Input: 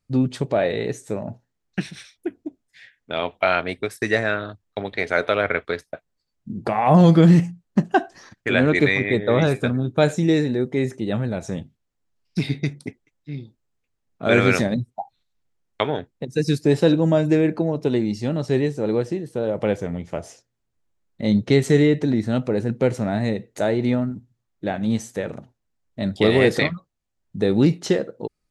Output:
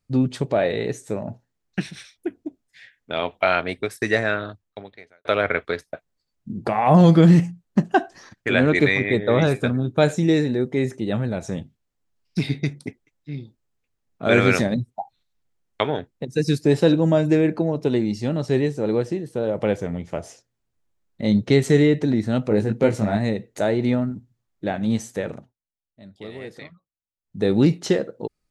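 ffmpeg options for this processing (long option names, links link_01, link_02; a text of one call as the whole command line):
ffmpeg -i in.wav -filter_complex "[0:a]asettb=1/sr,asplit=3[link_01][link_02][link_03];[link_01]atrim=end=22.494[link_04];[link_02]atrim=start=22.49:end=23.17,asetpts=PTS-STARTPTS,afade=type=in:duration=0.004:curve=qsin,afade=type=out:start_time=0.676:duration=0.004:curve=qsin,asplit=2[link_05][link_06];[link_06]adelay=19,volume=-3dB[link_07];[link_05][link_07]amix=inputs=2:normalize=0,atrim=end_sample=29988[link_08];[link_03]atrim=start=23.166[link_09];[link_04][link_08]acrossfade=duration=0.004:curve1=hsin:curve2=qsin[link_10];[link_10][link_09]acrossfade=duration=0.004:curve1=qsin:curve2=hsin,asplit=4[link_11][link_12][link_13][link_14];[link_11]atrim=end=5.25,asetpts=PTS-STARTPTS,afade=type=out:start_time=4.48:duration=0.77:curve=qua[link_15];[link_12]atrim=start=5.25:end=25.54,asetpts=PTS-STARTPTS,afade=type=in:duration=0.004:curve=hsin,afade=type=out:start_time=20.06:duration=0.23:silence=0.1[link_16];[link_13]atrim=start=25.54:end=27.23,asetpts=PTS-STARTPTS,volume=-20dB[link_17];[link_14]atrim=start=27.23,asetpts=PTS-STARTPTS,afade=type=in:duration=0.23:silence=0.1[link_18];[link_15][link_16][link_17][link_18]concat=n=4:v=0:a=1" out.wav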